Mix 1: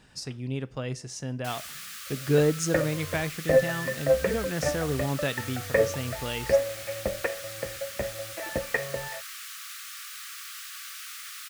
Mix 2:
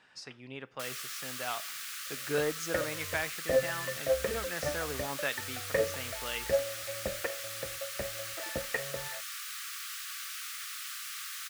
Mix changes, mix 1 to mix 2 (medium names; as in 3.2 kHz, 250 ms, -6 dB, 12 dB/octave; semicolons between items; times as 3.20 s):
speech: add band-pass filter 1.6 kHz, Q 0.73; first sound: entry -0.65 s; second sound -6.5 dB